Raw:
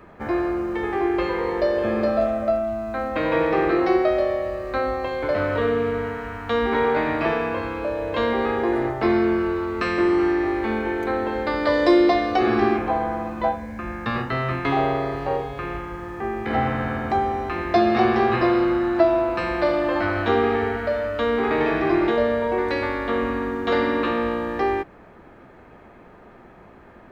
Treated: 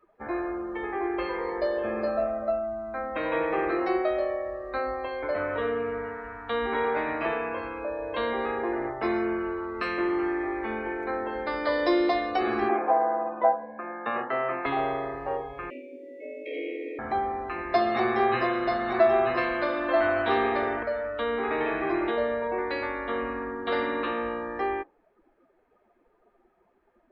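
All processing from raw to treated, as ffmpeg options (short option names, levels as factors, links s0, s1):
-filter_complex "[0:a]asettb=1/sr,asplit=3[s0][s1][s2];[s0]atrim=end=12.694[s3];[s1]atrim=start=12.69:end=14.66,asetpts=PTS-STARTPTS,afade=t=in:d=0.004:c=qsin,afade=t=out:st=1.966:d=0.004:c=qsin,highpass=220,lowpass=3000,equalizer=f=640:t=o:w=1.2:g=8[s4];[s2]atrim=start=14.656[s5];[s3][s4]acrossfade=d=0.004:c1=hsin:c2=qsin[s6];[s6][s5]acrossfade=d=0.004:c1=qsin:c2=hsin,asettb=1/sr,asplit=3[s7][s8][s9];[s7]atrim=end=15.704[s10];[s8]atrim=start=15.7:end=16.99,asetpts=PTS-STARTPTS,afade=t=in:d=0.004:c=qsin,afade=t=out:st=1.286:d=0.004:c=qsin,afreqshift=210,asuperstop=centerf=1100:order=12:qfactor=0.7[s11];[s9]atrim=start=16.986[s12];[s10][s11]acrossfade=d=0.004:c1=hsin:c2=qsin[s13];[s13][s12]acrossfade=d=0.004:c1=qsin:c2=hsin,asettb=1/sr,asplit=3[s14][s15][s16];[s14]atrim=end=17.724[s17];[s15]atrim=start=17.72:end=20.83,asetpts=PTS-STARTPTS,afade=t=in:d=0.004:c=qsin,afade=t=out:st=3.106:d=0.004:c=qsin,aecho=1:1:7.5:0.56,atrim=end_sample=137151,aecho=1:1:934:0.596,atrim=end_sample=137151[s18];[s16]atrim=start=20.826[s19];[s17][s18]acrossfade=d=0.004:c1=hsin:c2=qsin[s20];[s20][s19]acrossfade=d=0.004:c1=qsin:c2=hsin,equalizer=f=110:w=0.5:g=-10,afftdn=nr=18:nf=-38,volume=0.596"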